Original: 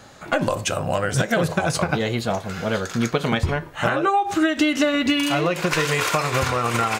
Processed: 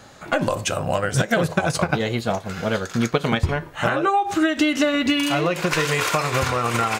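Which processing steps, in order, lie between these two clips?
0.84–3.5 transient shaper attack +2 dB, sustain -4 dB

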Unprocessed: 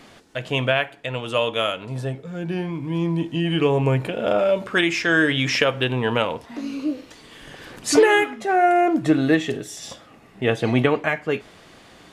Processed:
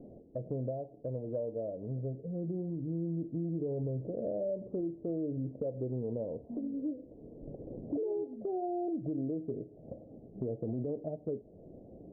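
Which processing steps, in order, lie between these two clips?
steep low-pass 620 Hz 48 dB/oct; limiter -15 dBFS, peak gain reduction 10 dB; compressor 3:1, threshold -37 dBFS, peak gain reduction 13.5 dB

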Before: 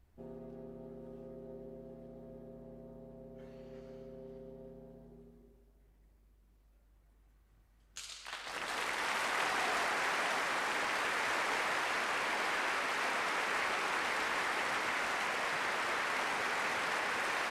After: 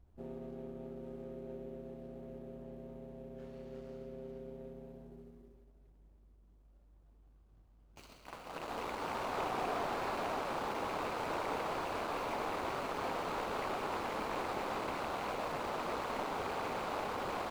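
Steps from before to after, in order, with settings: median filter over 25 samples; slew limiter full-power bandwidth 26 Hz; gain +3 dB

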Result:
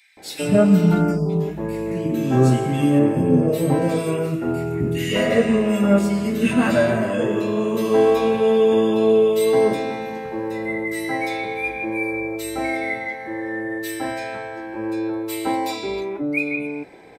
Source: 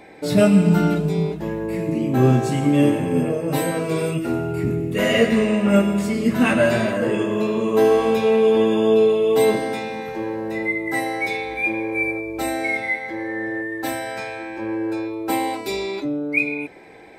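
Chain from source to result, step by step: 1.02–1.29 spectral delete 1400–4400 Hz; 2.99–3.82 tilt shelf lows +5 dB, about 900 Hz; bands offset in time highs, lows 0.17 s, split 2100 Hz

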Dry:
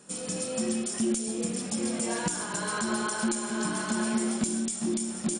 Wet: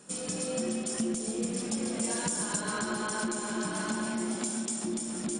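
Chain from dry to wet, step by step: 2.04–2.61 high shelf 5200 Hz +11 dB; 4.35–4.84 HPF 350 Hz; compressor, threshold -29 dBFS, peak gain reduction 8 dB; darkening echo 0.14 s, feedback 83%, low-pass 1700 Hz, level -7 dB

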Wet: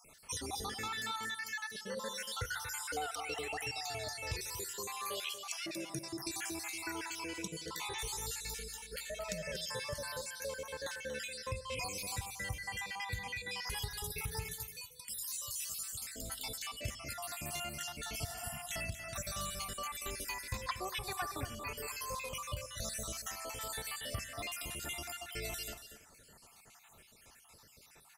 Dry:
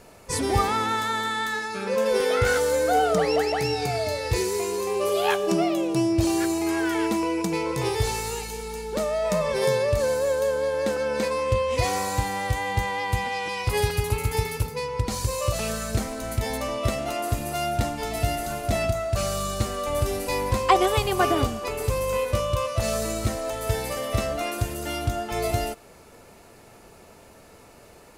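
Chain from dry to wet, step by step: random spectral dropouts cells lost 60%; 14.55–16.07 pre-emphasis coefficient 0.9; 18.32–18.56 spectral repair 300–7600 Hz both; passive tone stack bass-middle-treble 5-5-5; compressor 3:1, threshold -43 dBFS, peak gain reduction 10.5 dB; echo 0.235 s -11 dB; on a send at -16 dB: reverb RT60 0.75 s, pre-delay 3 ms; on the sum: gain +5.5 dB

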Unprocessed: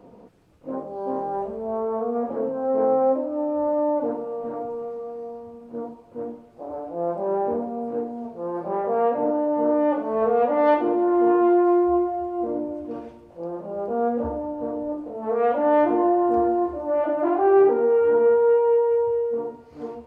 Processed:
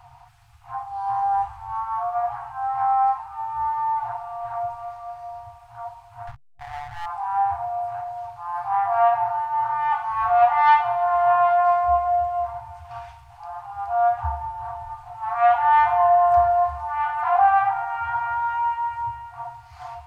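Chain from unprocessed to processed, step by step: 6.27–7.06 backlash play -29.5 dBFS; FFT band-reject 130–690 Hz; gain +8.5 dB

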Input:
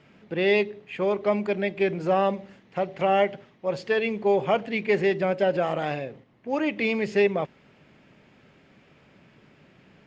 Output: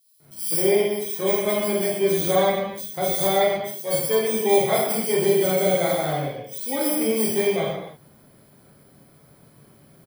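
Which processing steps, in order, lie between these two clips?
FFT order left unsorted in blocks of 16 samples; bands offset in time highs, lows 0.2 s, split 4000 Hz; non-linear reverb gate 0.34 s falling, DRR -5.5 dB; gain -3 dB

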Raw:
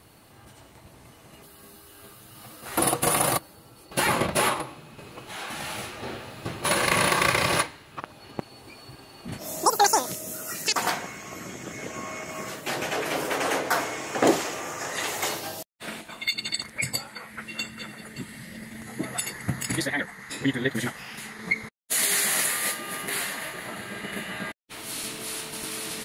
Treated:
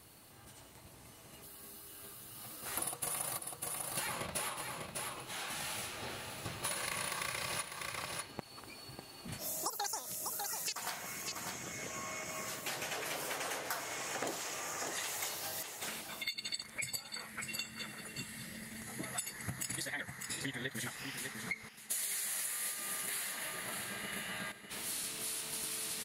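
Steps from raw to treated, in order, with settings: high shelf 3900 Hz +8 dB; echo 0.598 s -11.5 dB; dynamic EQ 310 Hz, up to -6 dB, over -43 dBFS, Q 1.1; compressor 5:1, threshold -29 dBFS, peak gain reduction 15 dB; gain -7.5 dB

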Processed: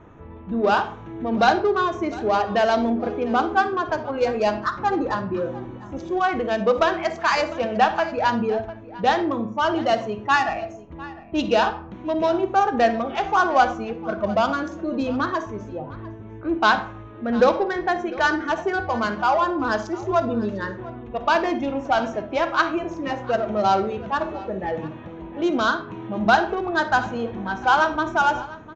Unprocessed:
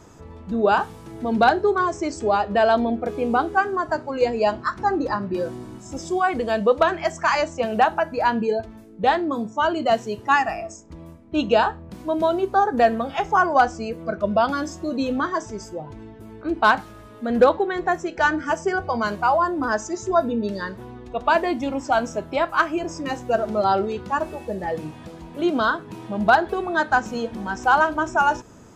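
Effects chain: Wiener smoothing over 9 samples; in parallel at -7.5 dB: soft clip -23.5 dBFS, distortion -6 dB; on the sum: steep low-pass 6600 Hz 48 dB/oct; high shelf 3200 Hz +9.5 dB; resonator 110 Hz, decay 0.35 s, harmonics odd, mix 50%; echo 0.701 s -19 dB; low-pass opened by the level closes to 2900 Hz, open at -18.5 dBFS; on a send at -11 dB: reverb RT60 0.50 s, pre-delay 45 ms; on the sum: gain +2.5 dB

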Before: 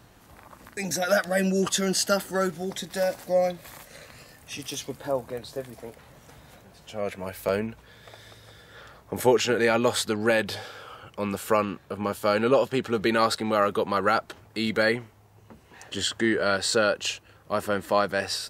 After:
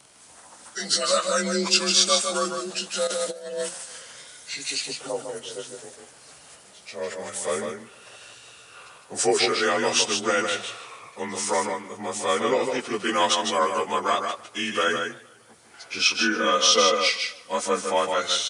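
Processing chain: inharmonic rescaling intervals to 90%; 15.99–17.82 comb 4 ms, depth 70%; echo 0.154 s -5.5 dB; 3.07–3.69 negative-ratio compressor -29 dBFS, ratio -0.5; RIAA curve recording; warbling echo 0.152 s, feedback 50%, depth 155 cents, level -22 dB; gain +2 dB

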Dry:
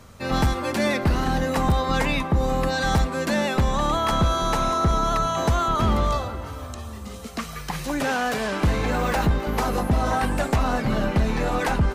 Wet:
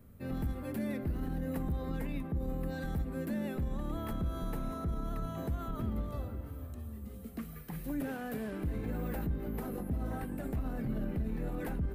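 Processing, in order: EQ curve 300 Hz 0 dB, 1000 Hz -17 dB, 1700 Hz -12 dB, 6200 Hz -22 dB, 14000 Hz +3 dB; limiter -20.5 dBFS, peak gain reduction 7.5 dB; notches 50/100/150/200/250/300/350 Hz; gain -6.5 dB

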